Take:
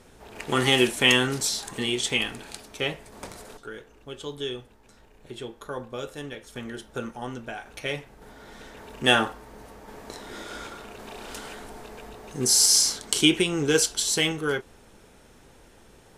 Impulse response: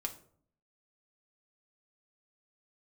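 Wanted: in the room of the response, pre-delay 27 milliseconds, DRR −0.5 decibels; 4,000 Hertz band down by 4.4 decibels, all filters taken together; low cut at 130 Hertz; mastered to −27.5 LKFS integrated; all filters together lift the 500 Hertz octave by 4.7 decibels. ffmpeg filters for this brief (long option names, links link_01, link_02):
-filter_complex "[0:a]highpass=130,equalizer=frequency=500:width_type=o:gain=6,equalizer=frequency=4000:width_type=o:gain=-6.5,asplit=2[link_01][link_02];[1:a]atrim=start_sample=2205,adelay=27[link_03];[link_02][link_03]afir=irnorm=-1:irlink=0,volume=0.5dB[link_04];[link_01][link_04]amix=inputs=2:normalize=0,volume=-6.5dB"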